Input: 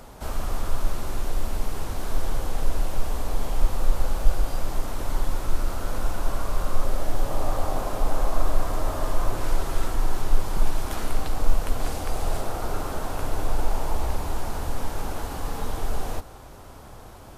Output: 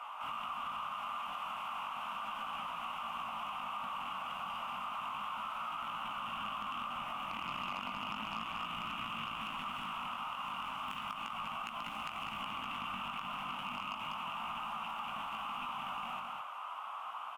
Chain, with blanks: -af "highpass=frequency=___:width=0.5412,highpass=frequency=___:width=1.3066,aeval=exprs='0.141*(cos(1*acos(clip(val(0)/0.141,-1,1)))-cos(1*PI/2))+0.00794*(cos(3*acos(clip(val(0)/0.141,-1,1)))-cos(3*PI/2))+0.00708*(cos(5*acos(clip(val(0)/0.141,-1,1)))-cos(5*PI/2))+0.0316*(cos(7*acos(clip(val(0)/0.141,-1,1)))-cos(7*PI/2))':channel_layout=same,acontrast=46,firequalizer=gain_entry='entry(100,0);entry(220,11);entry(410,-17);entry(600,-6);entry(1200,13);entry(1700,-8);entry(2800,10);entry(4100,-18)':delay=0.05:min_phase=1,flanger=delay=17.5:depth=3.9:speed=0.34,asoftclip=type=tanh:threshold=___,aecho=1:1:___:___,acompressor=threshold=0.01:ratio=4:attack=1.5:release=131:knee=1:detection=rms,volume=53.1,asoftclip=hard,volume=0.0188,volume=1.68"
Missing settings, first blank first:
650, 650, 0.0708, 195, 0.398